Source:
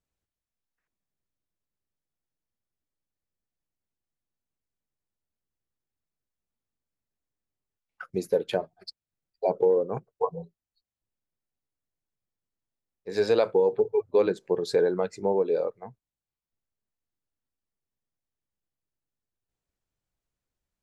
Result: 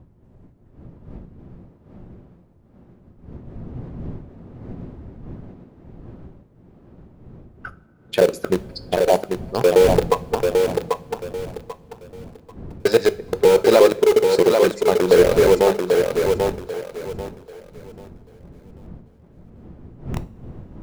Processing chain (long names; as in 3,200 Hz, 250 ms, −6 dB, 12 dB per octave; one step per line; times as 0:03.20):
slices reordered back to front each 119 ms, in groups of 4
wind on the microphone 180 Hz −43 dBFS
in parallel at −6.5 dB: bit reduction 4 bits
on the sum: mains-hum notches 50/100/150/200 Hz
on a send: feedback echo with a high-pass in the loop 790 ms, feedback 28%, high-pass 180 Hz, level −4 dB
on the sum: coupled-rooms reverb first 0.35 s, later 4.6 s, from −22 dB, DRR 13 dB
level +6 dB